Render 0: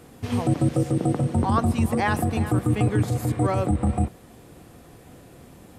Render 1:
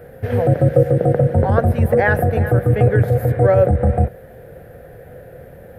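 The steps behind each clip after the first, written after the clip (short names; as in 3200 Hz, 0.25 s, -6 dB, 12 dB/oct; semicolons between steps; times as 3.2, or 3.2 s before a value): EQ curve 140 Hz 0 dB, 300 Hz -12 dB, 520 Hz +10 dB, 1100 Hz -14 dB, 1600 Hz +5 dB, 2600 Hz -11 dB, 7600 Hz -23 dB, 13000 Hz -2 dB; gain +8 dB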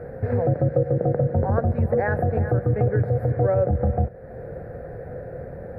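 compressor 2:1, threshold -30 dBFS, peak gain reduction 12 dB; running mean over 14 samples; gain +4 dB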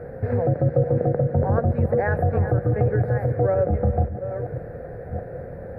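reverse delay 0.655 s, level -9.5 dB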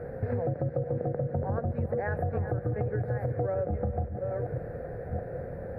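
compressor, threshold -24 dBFS, peak gain reduction 10 dB; gain -2.5 dB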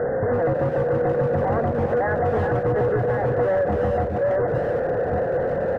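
overdrive pedal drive 27 dB, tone 1000 Hz, clips at -17.5 dBFS; brick-wall FIR low-pass 2100 Hz; speakerphone echo 0.33 s, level -9 dB; gain +4.5 dB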